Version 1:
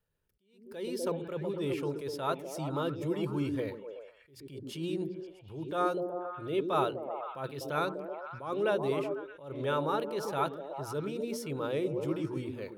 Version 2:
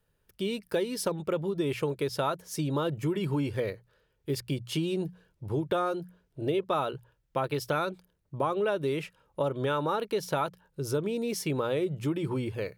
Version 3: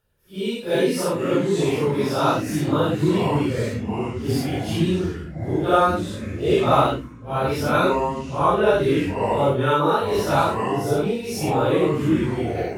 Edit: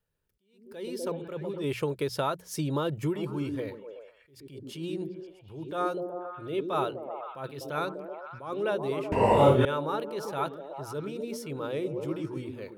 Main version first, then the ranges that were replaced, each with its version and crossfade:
1
1.64–3.16 s: from 2
9.12–9.65 s: from 3

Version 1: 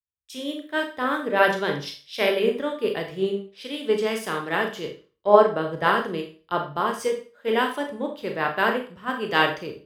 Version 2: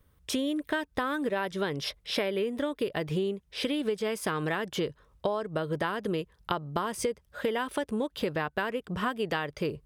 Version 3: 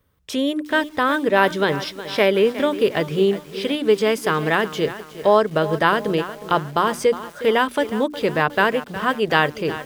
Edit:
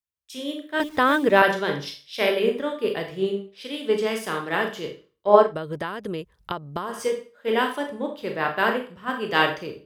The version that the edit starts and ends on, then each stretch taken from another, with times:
1
0.80–1.42 s: from 3
5.48–6.92 s: from 2, crossfade 0.16 s

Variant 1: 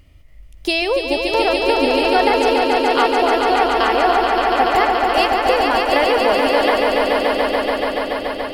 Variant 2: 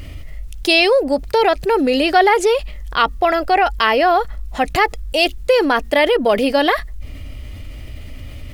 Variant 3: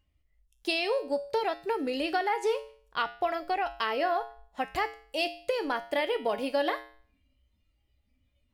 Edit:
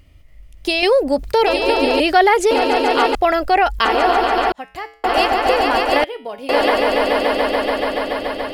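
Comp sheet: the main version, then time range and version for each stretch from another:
1
0.83–1.46 s: from 2
2.00–2.51 s: from 2
3.15–3.85 s: from 2
4.52–5.04 s: from 3
6.04–6.49 s: from 3

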